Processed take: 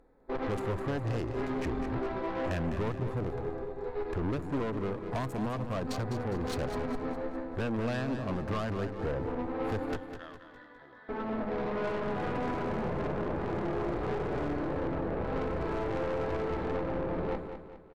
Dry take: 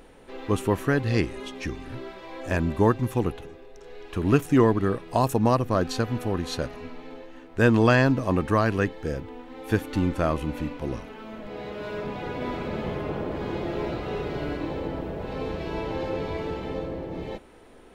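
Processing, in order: local Wiener filter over 15 samples; gate with hold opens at -38 dBFS; harmonic-percussive split harmonic +9 dB; compression 8:1, threshold -25 dBFS, peak gain reduction 18.5 dB; 9.96–11.09 s: two resonant band-passes 2.4 kHz, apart 0.86 oct; gain riding within 4 dB 2 s; Chebyshev shaper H 6 -14 dB, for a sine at -12.5 dBFS; saturation -28.5 dBFS, distortion -8 dB; on a send: feedback delay 204 ms, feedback 44%, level -9 dB

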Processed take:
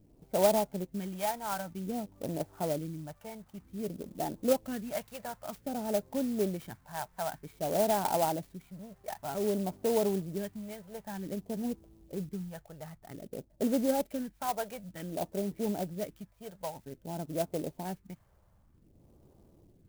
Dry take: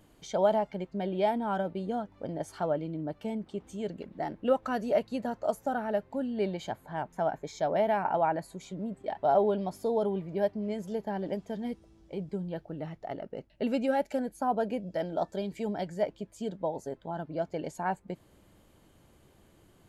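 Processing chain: level-controlled noise filter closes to 960 Hz, open at -23 dBFS; phase shifter stages 2, 0.53 Hz, lowest notch 270–3500 Hz; sampling jitter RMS 0.065 ms

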